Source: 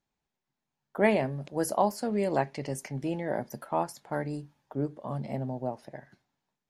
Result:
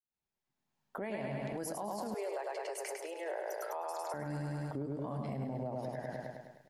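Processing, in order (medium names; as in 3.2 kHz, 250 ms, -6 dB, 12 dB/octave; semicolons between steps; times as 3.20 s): fade-in on the opening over 1.99 s; feedback delay 103 ms, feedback 59%, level -4.5 dB; compression 8:1, threshold -41 dBFS, peak gain reduction 20 dB; 2.14–4.14 s: steep high-pass 380 Hz 72 dB/octave; peak limiter -38.5 dBFS, peak gain reduction 9.5 dB; trim +8.5 dB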